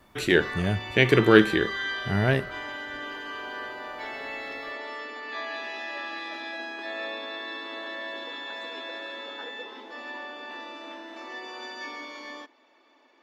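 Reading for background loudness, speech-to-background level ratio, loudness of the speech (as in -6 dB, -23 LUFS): -35.0 LUFS, 12.5 dB, -22.5 LUFS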